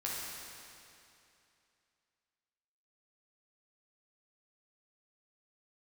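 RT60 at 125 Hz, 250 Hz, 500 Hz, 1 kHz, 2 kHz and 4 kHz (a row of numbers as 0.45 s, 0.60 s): 2.7 s, 2.7 s, 2.7 s, 2.7 s, 2.7 s, 2.5 s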